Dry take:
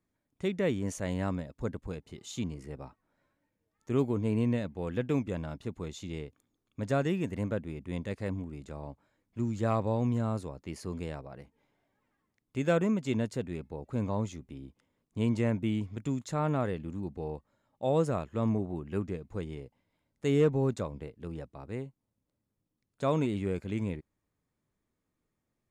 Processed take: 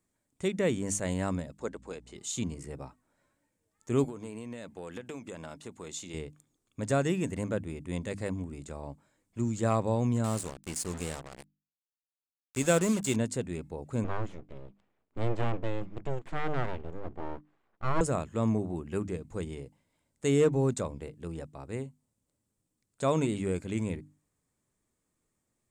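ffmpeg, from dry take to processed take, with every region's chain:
-filter_complex "[0:a]asettb=1/sr,asplit=3[s0][s1][s2];[s0]atrim=end=1.594[s3];[s1]atrim=start=1.59:end=2.16,asetpts=PTS-STARTPTS,afade=t=in:d=0.004:c=qsin,afade=t=out:st=0.566:d=0.004:c=qsin,highpass=310,lowpass=7700,aeval=exprs='val(0)+0.00141*(sin(2*PI*60*n/s)+sin(2*PI*2*60*n/s)/2+sin(2*PI*3*60*n/s)/3+sin(2*PI*4*60*n/s)/4+sin(2*PI*5*60*n/s)/5)':c=same[s4];[s2]atrim=start=2.156[s5];[s3][s4]acrossfade=d=0.004:c1=hsin:c2=qsin[s6];[s6][s5]acrossfade=d=0.004:c1=qsin:c2=hsin,asettb=1/sr,asplit=3[s7][s8][s9];[s7]atrim=end=4.044[s10];[s8]atrim=start=4.04:end=6.14,asetpts=PTS-STARTPTS,afade=t=in:d=0.004:c=qsin,afade=t=out:st=2.096:d=0.004:c=qsin,highpass=f=410:p=1,acompressor=threshold=0.0141:ratio=12:attack=3.2:release=140:knee=1:detection=peak[s11];[s9]atrim=start=6.136[s12];[s10][s11]acrossfade=d=0.004:c1=hsin:c2=qsin[s13];[s13][s12]acrossfade=d=0.004:c1=qsin:c2=hsin,asettb=1/sr,asplit=3[s14][s15][s16];[s14]atrim=end=10.244[s17];[s15]atrim=start=10.24:end=13.16,asetpts=PTS-STARTPTS,afade=t=in:d=0.004:c=qsin,afade=t=out:st=2.916:d=0.004:c=qsin,highshelf=f=4500:g=10,aeval=exprs='sgn(val(0))*max(abs(val(0))-0.00237,0)':c=same,acrusher=bits=6:mix=0:aa=0.5[s18];[s16]atrim=start=13.156[s19];[s17][s18]acrossfade=d=0.004:c1=hsin:c2=qsin[s20];[s20][s19]acrossfade=d=0.004:c1=qsin:c2=hsin,asettb=1/sr,asplit=3[s21][s22][s23];[s21]atrim=end=14.044[s24];[s22]atrim=start=14.04:end=18.01,asetpts=PTS-STARTPTS,afade=t=in:d=0.004:c=qsin,afade=t=out:st=3.966:d=0.004:c=qsin,aeval=exprs='abs(val(0))':c=same,lowpass=2500[s25];[s23]atrim=start=18.006[s26];[s24][s25]acrossfade=d=0.004:c1=hsin:c2=qsin[s27];[s27][s26]acrossfade=d=0.004:c1=qsin:c2=hsin,equalizer=f=8100:w=1.7:g=13,bandreject=f=50:t=h:w=6,bandreject=f=100:t=h:w=6,bandreject=f=150:t=h:w=6,bandreject=f=200:t=h:w=6,bandreject=f=250:t=h:w=6,bandreject=f=300:t=h:w=6,volume=1.19"

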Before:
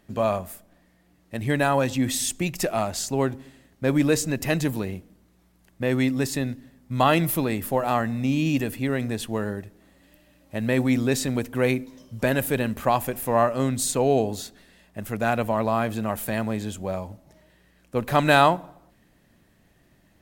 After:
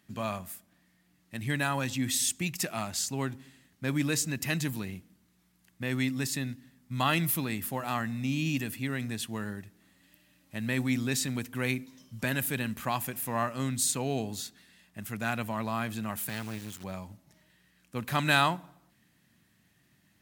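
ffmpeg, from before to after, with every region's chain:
-filter_complex "[0:a]asettb=1/sr,asplit=3[s0][s1][s2];[s0]atrim=end=16.294[s3];[s1]atrim=start=16.29:end=16.84,asetpts=PTS-STARTPTS,afade=t=in:d=0.004:c=qsin,afade=t=out:st=0.546:d=0.004:c=qsin,lowshelf=f=63:g=-2.5,acrusher=bits=4:dc=4:mix=0:aa=0.000001[s4];[s2]atrim=start=16.836[s5];[s3][s4]acrossfade=d=0.004:c1=hsin:c2=qsin[s6];[s6][s5]acrossfade=d=0.004:c1=qsin:c2=hsin,highpass=120,equalizer=f=520:t=o:w=1.8:g=-13.5,volume=0.841"

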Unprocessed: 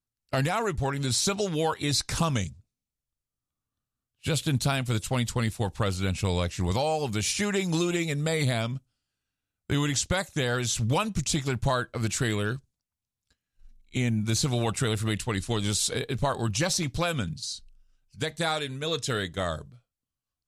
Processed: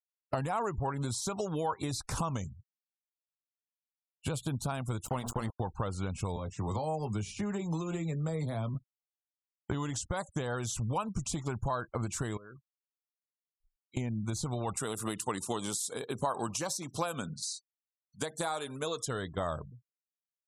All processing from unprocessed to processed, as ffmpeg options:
-filter_complex "[0:a]asettb=1/sr,asplit=3[s0][s1][s2];[s0]atrim=end=5.054[s3];[s1]atrim=start=5.05:end=5.6,asetpts=PTS-STARTPTS,afade=t=in:d=0.004:c=qsin,afade=t=out:st=0.546:d=0.004:c=qsin,bandreject=f=60:t=h:w=6,bandreject=f=120:t=h:w=6,bandreject=f=180:t=h:w=6,bandreject=f=240:t=h:w=6,asubboost=boost=5.5:cutoff=51,aeval=exprs='val(0)*gte(abs(val(0)),0.0237)':c=same[s4];[s2]atrim=start=5.596[s5];[s3][s4]acrossfade=d=0.004:c1=hsin:c2=qsin[s6];[s6][s5]acrossfade=d=0.004:c1=qsin:c2=hsin,asettb=1/sr,asplit=3[s7][s8][s9];[s7]atrim=end=6.364[s10];[s8]atrim=start=6.36:end=8.75,asetpts=PTS-STARTPTS,afade=t=in:d=0.004:c=qsin,afade=t=out:st=2.386:d=0.004:c=qsin,highshelf=f=6900:g=-2.5,acrossover=split=83|200|490|4200[s11][s12][s13][s14][s15];[s11]acompressor=threshold=0.00355:ratio=3[s16];[s12]acompressor=threshold=0.02:ratio=3[s17];[s13]acompressor=threshold=0.00891:ratio=3[s18];[s14]acompressor=threshold=0.00708:ratio=3[s19];[s15]acompressor=threshold=0.00316:ratio=3[s20];[s16][s17][s18][s19][s20]amix=inputs=5:normalize=0,asplit=2[s21][s22];[s22]adelay=19,volume=0.376[s23];[s21][s23]amix=inputs=2:normalize=0,atrim=end_sample=105399[s24];[s9]atrim=start=8.746[s25];[s10][s24]acrossfade=d=0.004:c1=hsin:c2=qsin[s26];[s26][s25]acrossfade=d=0.004:c1=qsin:c2=hsin,asettb=1/sr,asplit=3[s27][s28][s29];[s27]atrim=end=12.374[s30];[s28]atrim=start=12.37:end=13.97,asetpts=PTS-STARTPTS,afade=t=in:d=0.004:c=qsin,afade=t=out:st=1.596:d=0.004:c=qsin,highpass=f=300:p=1,acompressor=threshold=0.00708:ratio=20:attack=3.2:release=140:knee=1:detection=peak[s31];[s29]atrim=start=13.966[s32];[s30][s31]acrossfade=d=0.004:c1=hsin:c2=qsin[s33];[s33][s32]acrossfade=d=0.004:c1=qsin:c2=hsin,asettb=1/sr,asplit=3[s34][s35][s36];[s34]atrim=end=14.774[s37];[s35]atrim=start=14.77:end=19.06,asetpts=PTS-STARTPTS,afade=t=in:d=0.004:c=qsin,afade=t=out:st=4.286:d=0.004:c=qsin,highpass=200,highshelf=f=4900:g=8,aecho=1:1:64|128|192:0.0668|0.0287|0.0124,atrim=end_sample=189189[s38];[s36]atrim=start=19.056[s39];[s37][s38]acrossfade=d=0.004:c1=hsin:c2=qsin[s40];[s40][s39]acrossfade=d=0.004:c1=qsin:c2=hsin,acompressor=threshold=0.0316:ratio=16,equalizer=f=1000:t=o:w=1:g=8,equalizer=f=2000:t=o:w=1:g=-7,equalizer=f=4000:t=o:w=1:g=-6,afftfilt=real='re*gte(hypot(re,im),0.00355)':imag='im*gte(hypot(re,im),0.00355)':win_size=1024:overlap=0.75"

